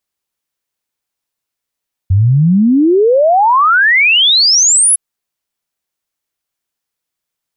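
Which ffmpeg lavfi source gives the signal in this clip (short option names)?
-f lavfi -i "aevalsrc='0.501*clip(min(t,2.86-t)/0.01,0,1)*sin(2*PI*90*2.86/log(11000/90)*(exp(log(11000/90)*t/2.86)-1))':d=2.86:s=44100"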